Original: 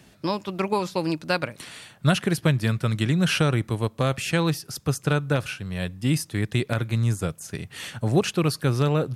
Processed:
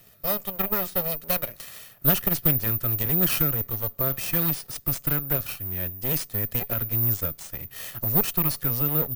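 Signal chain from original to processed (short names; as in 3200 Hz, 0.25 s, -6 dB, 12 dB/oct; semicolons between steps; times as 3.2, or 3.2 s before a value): minimum comb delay 1.6 ms; careless resampling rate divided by 3×, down none, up zero stuff; gain -3.5 dB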